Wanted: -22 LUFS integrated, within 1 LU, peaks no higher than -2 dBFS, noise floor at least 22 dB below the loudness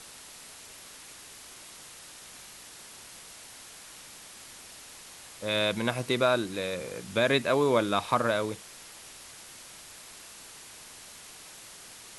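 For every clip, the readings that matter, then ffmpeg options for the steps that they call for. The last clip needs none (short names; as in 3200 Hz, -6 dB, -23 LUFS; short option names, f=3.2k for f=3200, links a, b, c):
noise floor -48 dBFS; noise floor target -50 dBFS; loudness -27.5 LUFS; peak -10.5 dBFS; loudness target -22.0 LUFS
-> -af "afftdn=nr=6:nf=-48"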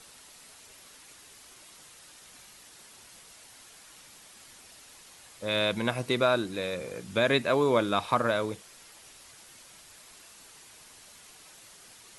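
noise floor -53 dBFS; loudness -27.5 LUFS; peak -10.5 dBFS; loudness target -22.0 LUFS
-> -af "volume=5.5dB"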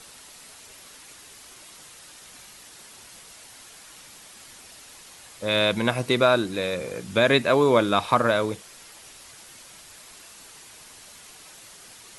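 loudness -22.0 LUFS; peak -5.0 dBFS; noise floor -48 dBFS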